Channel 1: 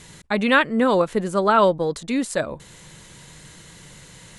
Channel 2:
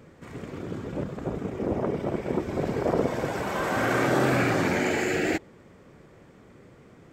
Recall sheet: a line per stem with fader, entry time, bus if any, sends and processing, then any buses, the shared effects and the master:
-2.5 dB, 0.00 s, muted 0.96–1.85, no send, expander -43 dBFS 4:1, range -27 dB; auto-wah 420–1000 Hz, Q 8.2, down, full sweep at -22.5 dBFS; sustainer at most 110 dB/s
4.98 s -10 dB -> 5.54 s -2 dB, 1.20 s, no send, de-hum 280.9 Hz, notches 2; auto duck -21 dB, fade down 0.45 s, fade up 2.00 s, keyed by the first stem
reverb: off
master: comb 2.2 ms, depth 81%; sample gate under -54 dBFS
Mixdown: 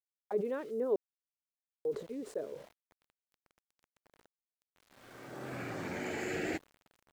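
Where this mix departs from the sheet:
stem 2 -10.0 dB -> -18.0 dB; master: missing comb 2.2 ms, depth 81%

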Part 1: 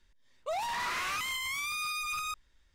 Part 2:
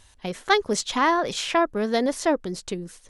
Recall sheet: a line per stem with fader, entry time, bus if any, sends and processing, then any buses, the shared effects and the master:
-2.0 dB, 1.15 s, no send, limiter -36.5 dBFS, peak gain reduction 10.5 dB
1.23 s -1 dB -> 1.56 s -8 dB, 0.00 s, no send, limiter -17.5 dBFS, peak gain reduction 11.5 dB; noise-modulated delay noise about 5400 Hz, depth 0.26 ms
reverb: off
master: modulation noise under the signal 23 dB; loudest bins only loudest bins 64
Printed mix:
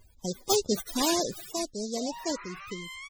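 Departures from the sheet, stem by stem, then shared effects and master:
stem 1: entry 1.15 s -> 1.50 s; stem 2: missing limiter -17.5 dBFS, peak gain reduction 11.5 dB

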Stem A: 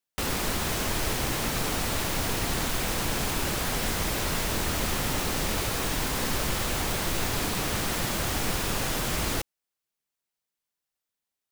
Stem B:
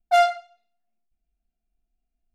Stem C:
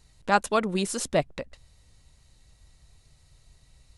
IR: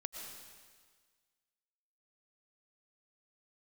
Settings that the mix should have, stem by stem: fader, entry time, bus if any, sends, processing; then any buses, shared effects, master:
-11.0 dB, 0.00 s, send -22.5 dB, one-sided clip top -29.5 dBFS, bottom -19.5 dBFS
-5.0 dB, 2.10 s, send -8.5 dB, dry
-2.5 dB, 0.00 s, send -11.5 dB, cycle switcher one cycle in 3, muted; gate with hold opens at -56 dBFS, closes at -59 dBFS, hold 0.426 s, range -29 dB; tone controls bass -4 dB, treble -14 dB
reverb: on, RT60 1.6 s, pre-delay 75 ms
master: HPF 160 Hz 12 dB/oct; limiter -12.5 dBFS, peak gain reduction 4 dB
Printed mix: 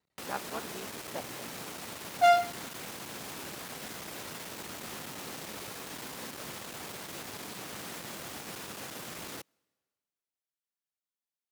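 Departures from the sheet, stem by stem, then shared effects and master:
stem C -2.5 dB -> -14.0 dB; reverb return -7.5 dB

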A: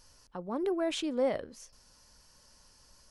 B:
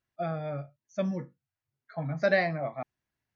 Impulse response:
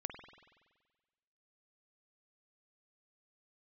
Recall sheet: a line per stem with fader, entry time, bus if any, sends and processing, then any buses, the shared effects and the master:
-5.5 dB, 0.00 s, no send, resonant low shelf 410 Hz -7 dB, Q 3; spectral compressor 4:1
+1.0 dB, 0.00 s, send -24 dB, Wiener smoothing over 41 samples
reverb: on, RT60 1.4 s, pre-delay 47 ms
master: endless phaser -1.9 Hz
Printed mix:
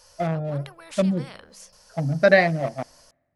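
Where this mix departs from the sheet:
stem B +1.0 dB -> +9.0 dB; master: missing endless phaser -1.9 Hz

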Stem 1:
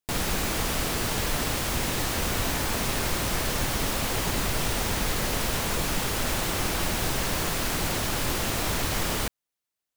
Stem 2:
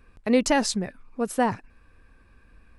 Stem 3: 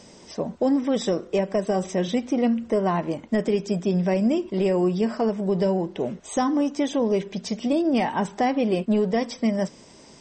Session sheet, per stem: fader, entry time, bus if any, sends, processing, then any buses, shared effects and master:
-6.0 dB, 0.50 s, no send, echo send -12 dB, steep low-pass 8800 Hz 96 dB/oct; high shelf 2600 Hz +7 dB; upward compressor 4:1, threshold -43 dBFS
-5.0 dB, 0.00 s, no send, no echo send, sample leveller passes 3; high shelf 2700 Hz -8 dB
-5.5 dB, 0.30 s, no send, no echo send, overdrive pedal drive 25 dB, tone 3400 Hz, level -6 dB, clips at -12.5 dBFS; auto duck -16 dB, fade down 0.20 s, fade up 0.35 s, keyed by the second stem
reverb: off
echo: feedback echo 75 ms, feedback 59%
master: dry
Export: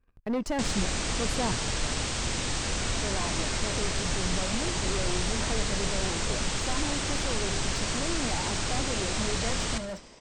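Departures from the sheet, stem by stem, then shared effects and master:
stem 2 -5.0 dB -> -15.0 dB; stem 3 -5.5 dB -> -17.5 dB; master: extra low shelf 140 Hz +5.5 dB

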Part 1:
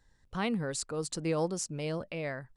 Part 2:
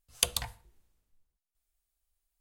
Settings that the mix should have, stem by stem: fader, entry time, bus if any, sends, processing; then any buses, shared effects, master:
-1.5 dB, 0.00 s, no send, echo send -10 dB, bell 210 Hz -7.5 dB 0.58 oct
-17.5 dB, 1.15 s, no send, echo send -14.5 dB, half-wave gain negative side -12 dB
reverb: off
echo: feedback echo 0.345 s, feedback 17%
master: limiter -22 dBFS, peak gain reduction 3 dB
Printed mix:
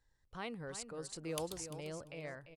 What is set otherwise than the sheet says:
stem 1 -1.5 dB -> -9.5 dB; stem 2: missing half-wave gain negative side -12 dB

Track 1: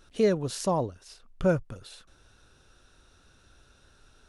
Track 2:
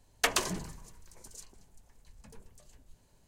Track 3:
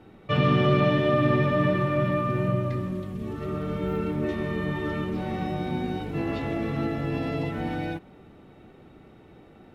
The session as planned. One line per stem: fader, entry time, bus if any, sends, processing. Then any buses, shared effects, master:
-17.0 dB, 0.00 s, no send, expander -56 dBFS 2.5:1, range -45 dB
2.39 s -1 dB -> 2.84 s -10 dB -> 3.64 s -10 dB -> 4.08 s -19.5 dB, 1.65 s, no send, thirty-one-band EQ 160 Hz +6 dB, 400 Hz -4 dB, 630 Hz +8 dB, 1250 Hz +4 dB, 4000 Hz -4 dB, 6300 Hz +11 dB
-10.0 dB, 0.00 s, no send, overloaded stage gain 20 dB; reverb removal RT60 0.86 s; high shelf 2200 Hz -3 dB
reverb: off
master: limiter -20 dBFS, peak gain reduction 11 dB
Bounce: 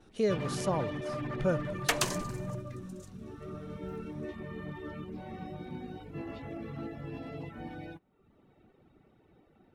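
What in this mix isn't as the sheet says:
stem 1 -17.0 dB -> -5.5 dB; stem 2: missing thirty-one-band EQ 160 Hz +6 dB, 400 Hz -4 dB, 630 Hz +8 dB, 1250 Hz +4 dB, 4000 Hz -4 dB, 6300 Hz +11 dB; master: missing limiter -20 dBFS, peak gain reduction 11 dB

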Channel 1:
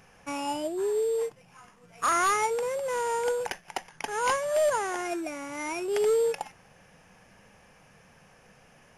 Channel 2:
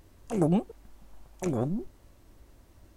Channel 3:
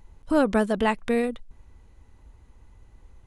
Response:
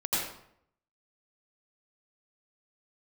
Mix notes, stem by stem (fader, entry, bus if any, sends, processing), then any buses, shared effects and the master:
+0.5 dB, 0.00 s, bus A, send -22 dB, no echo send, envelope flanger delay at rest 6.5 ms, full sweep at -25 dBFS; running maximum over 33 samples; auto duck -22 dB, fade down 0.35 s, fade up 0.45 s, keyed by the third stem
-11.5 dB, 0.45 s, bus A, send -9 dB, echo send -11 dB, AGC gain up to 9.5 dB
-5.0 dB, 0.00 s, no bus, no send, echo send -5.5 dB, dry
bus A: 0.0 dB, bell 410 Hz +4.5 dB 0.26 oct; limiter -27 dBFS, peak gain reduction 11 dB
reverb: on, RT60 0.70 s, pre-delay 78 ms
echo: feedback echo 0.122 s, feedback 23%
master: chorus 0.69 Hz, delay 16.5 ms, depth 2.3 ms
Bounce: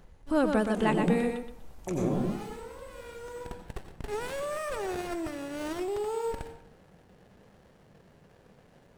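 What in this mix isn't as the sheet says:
stem 1: missing envelope flanger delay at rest 6.5 ms, full sweep at -25 dBFS; master: missing chorus 0.69 Hz, delay 16.5 ms, depth 2.3 ms

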